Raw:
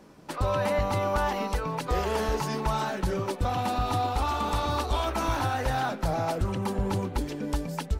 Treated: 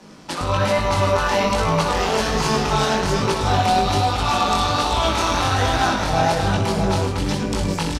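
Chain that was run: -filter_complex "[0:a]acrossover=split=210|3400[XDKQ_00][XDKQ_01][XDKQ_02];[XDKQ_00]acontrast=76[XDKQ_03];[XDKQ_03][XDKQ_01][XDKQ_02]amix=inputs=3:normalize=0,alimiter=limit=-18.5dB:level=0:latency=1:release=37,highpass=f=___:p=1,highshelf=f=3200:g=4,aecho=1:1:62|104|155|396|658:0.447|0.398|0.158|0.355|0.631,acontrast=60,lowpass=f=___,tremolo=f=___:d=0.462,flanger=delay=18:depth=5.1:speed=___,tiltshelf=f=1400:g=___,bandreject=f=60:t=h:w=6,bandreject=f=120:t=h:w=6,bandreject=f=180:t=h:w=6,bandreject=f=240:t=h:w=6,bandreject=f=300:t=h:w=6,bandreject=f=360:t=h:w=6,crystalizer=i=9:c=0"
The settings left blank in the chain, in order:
130, 5000, 180, 1.2, 4.5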